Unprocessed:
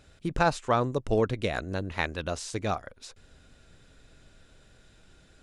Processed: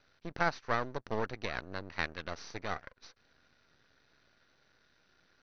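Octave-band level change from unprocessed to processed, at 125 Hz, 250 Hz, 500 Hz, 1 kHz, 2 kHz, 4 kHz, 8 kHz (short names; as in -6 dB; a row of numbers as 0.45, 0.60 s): -12.0, -11.0, -10.0, -7.0, -3.0, -6.0, -12.5 dB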